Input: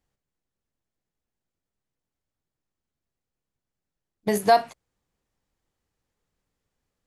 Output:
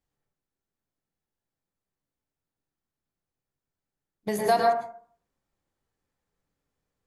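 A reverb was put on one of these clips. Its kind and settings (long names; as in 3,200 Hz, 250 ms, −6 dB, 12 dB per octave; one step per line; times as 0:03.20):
dense smooth reverb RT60 0.52 s, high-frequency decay 0.3×, pre-delay 95 ms, DRR −1.5 dB
level −5.5 dB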